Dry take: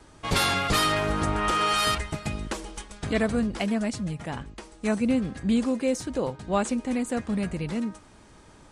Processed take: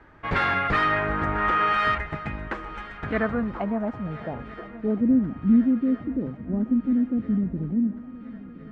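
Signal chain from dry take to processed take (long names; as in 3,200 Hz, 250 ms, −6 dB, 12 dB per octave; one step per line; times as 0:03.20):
low-pass filter sweep 1,800 Hz → 260 Hz, 0:02.99–0:05.36
feedback echo with a long and a short gap by turns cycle 1,365 ms, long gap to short 3 to 1, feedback 58%, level −19 dB
level −1.5 dB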